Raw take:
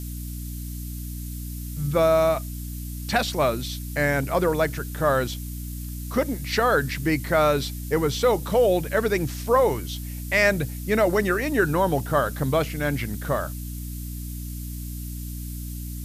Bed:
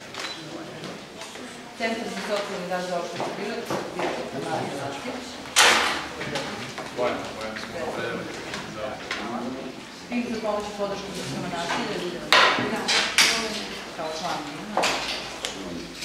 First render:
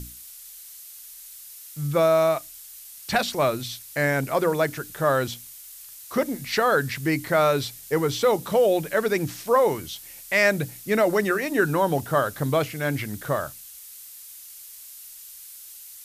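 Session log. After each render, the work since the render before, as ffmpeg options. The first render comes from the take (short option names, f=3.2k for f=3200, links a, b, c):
-af "bandreject=f=60:t=h:w=6,bandreject=f=120:t=h:w=6,bandreject=f=180:t=h:w=6,bandreject=f=240:t=h:w=6,bandreject=f=300:t=h:w=6"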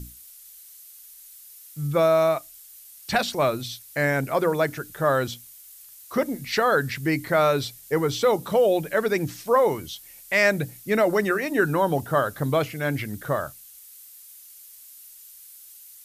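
-af "afftdn=nr=6:nf=-44"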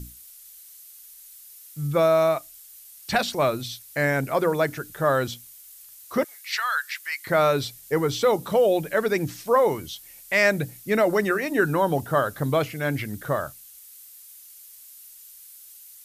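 -filter_complex "[0:a]asettb=1/sr,asplit=3[a][b][c];[a]atrim=end=6.244[d];[b]atrim=start=6.24:end=7.27,asetpts=PTS-STARTPTS,afade=t=in:d=0.004:c=qsin,afade=t=out:st=1.026:d=0.004:c=qsin,highpass=f=1.2k:w=0.5412,highpass=f=1.2k:w=1.3066[e];[c]atrim=start=7.266[f];[d][e]acrossfade=d=0.004:c1=hsin:c2=qsin[g];[g][f]acrossfade=d=0.004:c1=qsin:c2=hsin"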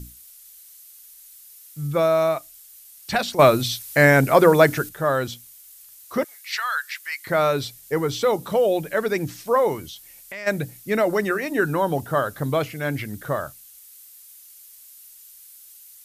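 -filter_complex "[0:a]asplit=3[a][b][c];[a]afade=t=out:st=9.86:d=0.02[d];[b]acompressor=threshold=-34dB:ratio=4:attack=3.2:release=140:knee=1:detection=peak,afade=t=in:st=9.86:d=0.02,afade=t=out:st=10.46:d=0.02[e];[c]afade=t=in:st=10.46:d=0.02[f];[d][e][f]amix=inputs=3:normalize=0,asplit=3[g][h][i];[g]atrim=end=3.392[j];[h]atrim=start=3.388:end=4.892,asetpts=PTS-STARTPTS,volume=8.5dB[k];[i]atrim=start=4.888[l];[j][k]acrossfade=d=0.004:c1=hsin:c2=hsin[m];[m][l]acrossfade=d=0.004:c1=hsin:c2=hsin"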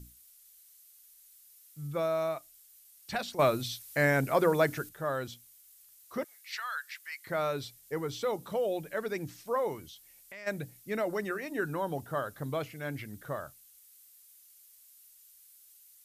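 -af "volume=-11.5dB"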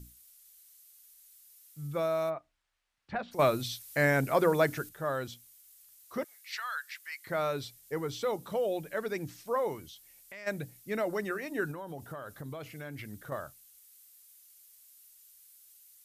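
-filter_complex "[0:a]asplit=3[a][b][c];[a]afade=t=out:st=2.29:d=0.02[d];[b]lowpass=1.7k,afade=t=in:st=2.29:d=0.02,afade=t=out:st=3.31:d=0.02[e];[c]afade=t=in:st=3.31:d=0.02[f];[d][e][f]amix=inputs=3:normalize=0,asettb=1/sr,asplit=3[g][h][i];[g]atrim=end=11.714[j];[h]atrim=start=11.71:end=13.32,asetpts=PTS-STARTPTS,afade=t=in:d=0.004:c=qsin,afade=t=out:st=1.606:d=0.004:c=qsin,acompressor=threshold=-37dB:ratio=12:attack=3.2:release=140:knee=1:detection=peak[k];[i]atrim=start=13.316[l];[j][k]acrossfade=d=0.004:c1=hsin:c2=qsin[m];[m][l]acrossfade=d=0.004:c1=qsin:c2=hsin"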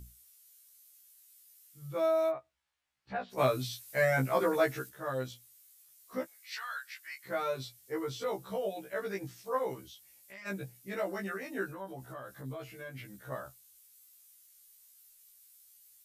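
-af "afftfilt=real='re*1.73*eq(mod(b,3),0)':imag='im*1.73*eq(mod(b,3),0)':win_size=2048:overlap=0.75"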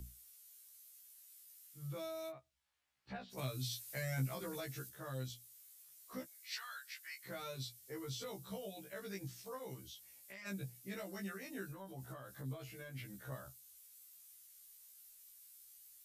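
-filter_complex "[0:a]alimiter=limit=-21dB:level=0:latency=1:release=317,acrossover=split=200|3000[a][b][c];[b]acompressor=threshold=-54dB:ratio=2.5[d];[a][d][c]amix=inputs=3:normalize=0"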